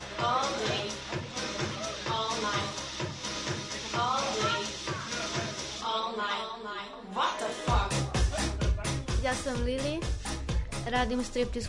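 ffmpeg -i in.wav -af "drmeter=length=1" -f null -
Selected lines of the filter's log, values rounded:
Channel 1: DR: 9.9
Overall DR: 9.9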